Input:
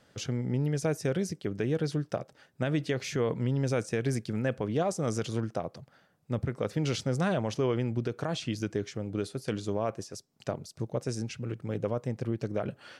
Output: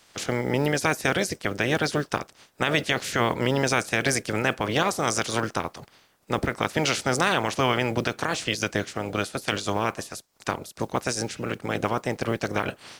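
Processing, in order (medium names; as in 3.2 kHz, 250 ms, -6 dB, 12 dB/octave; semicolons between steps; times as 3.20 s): spectral peaks clipped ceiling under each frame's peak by 22 dB; modulation noise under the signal 31 dB; trim +5.5 dB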